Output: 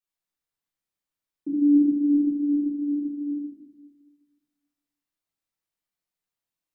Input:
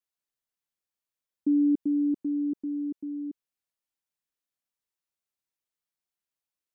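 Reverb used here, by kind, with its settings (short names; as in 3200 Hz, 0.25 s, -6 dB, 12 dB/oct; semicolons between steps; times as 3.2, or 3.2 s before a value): shoebox room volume 580 m³, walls mixed, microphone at 3.7 m; gain -6.5 dB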